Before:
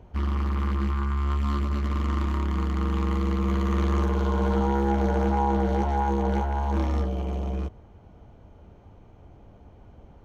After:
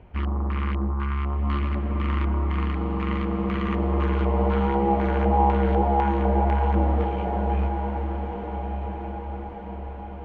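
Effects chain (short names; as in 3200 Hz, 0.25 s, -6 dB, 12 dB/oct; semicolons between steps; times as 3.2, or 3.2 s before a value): LFO low-pass square 2 Hz 740–2500 Hz; diffused feedback echo 1.342 s, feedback 54%, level -7 dB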